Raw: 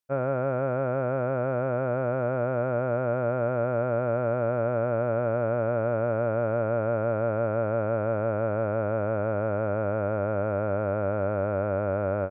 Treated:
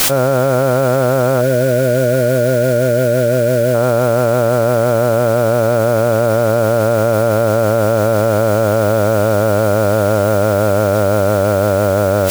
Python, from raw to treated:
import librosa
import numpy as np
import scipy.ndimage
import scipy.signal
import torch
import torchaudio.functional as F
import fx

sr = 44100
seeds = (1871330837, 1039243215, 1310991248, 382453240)

p1 = fx.spec_box(x, sr, start_s=1.41, length_s=2.33, low_hz=660.0, high_hz=1400.0, gain_db=-20)
p2 = fx.quant_dither(p1, sr, seeds[0], bits=6, dither='triangular')
p3 = p1 + (p2 * 10.0 ** (-5.0 / 20.0))
p4 = fx.env_flatten(p3, sr, amount_pct=100)
y = p4 * 10.0 ** (7.5 / 20.0)